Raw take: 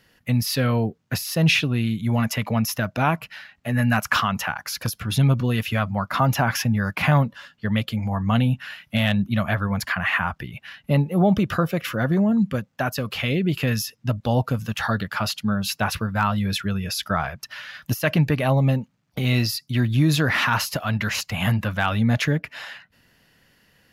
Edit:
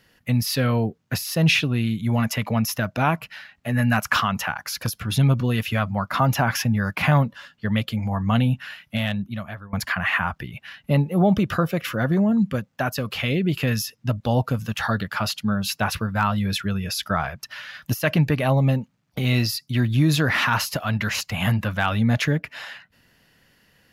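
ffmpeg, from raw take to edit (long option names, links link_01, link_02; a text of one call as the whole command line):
ffmpeg -i in.wav -filter_complex "[0:a]asplit=2[link_01][link_02];[link_01]atrim=end=9.73,asetpts=PTS-STARTPTS,afade=type=out:start_time=8.6:duration=1.13:silence=0.0891251[link_03];[link_02]atrim=start=9.73,asetpts=PTS-STARTPTS,afade=type=in:duration=0.004:curve=hsin:silence=0.0891251[link_04];[link_03][link_04]concat=n=2:v=0:a=1" out.wav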